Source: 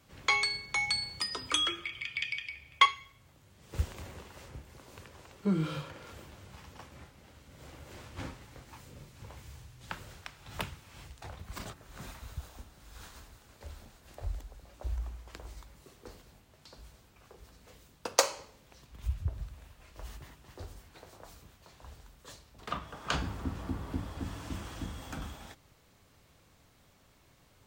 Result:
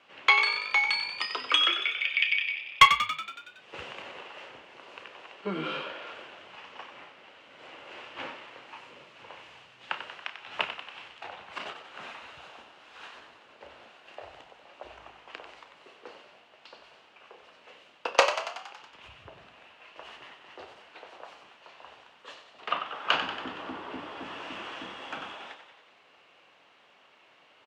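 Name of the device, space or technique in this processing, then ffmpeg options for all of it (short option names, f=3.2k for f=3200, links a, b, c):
megaphone: -filter_complex "[0:a]highpass=500,lowpass=2.8k,equalizer=f=2.8k:t=o:w=0.37:g=9.5,asoftclip=type=hard:threshold=-13.5dB,asplit=2[a][b];[b]adelay=31,volume=-12.5dB[c];[a][c]amix=inputs=2:normalize=0,asettb=1/sr,asplit=3[d][e][f];[d]atrim=end=13.154[g];[e]atrim=start=13.15:end=13.82,asetpts=PTS-STARTPTS,afade=t=in:d=0.004:c=qsin,afade=t=out:st=0.666:d=0.004:c=qsin,tiltshelf=f=740:g=3.5[h];[f]atrim=start=13.816[i];[g][h]acrossfade=d=0.004:c1=hsin:c2=qsin[j];[j][i]acrossfade=d=0.004:c1=qsin:c2=hsin,asplit=9[k][l][m][n][o][p][q][r][s];[l]adelay=93,afreqshift=51,volume=-9.5dB[t];[m]adelay=186,afreqshift=102,volume=-13.8dB[u];[n]adelay=279,afreqshift=153,volume=-18.1dB[v];[o]adelay=372,afreqshift=204,volume=-22.4dB[w];[p]adelay=465,afreqshift=255,volume=-26.7dB[x];[q]adelay=558,afreqshift=306,volume=-31dB[y];[r]adelay=651,afreqshift=357,volume=-35.3dB[z];[s]adelay=744,afreqshift=408,volume=-39.6dB[aa];[k][t][u][v][w][x][y][z][aa]amix=inputs=9:normalize=0,volume=7dB"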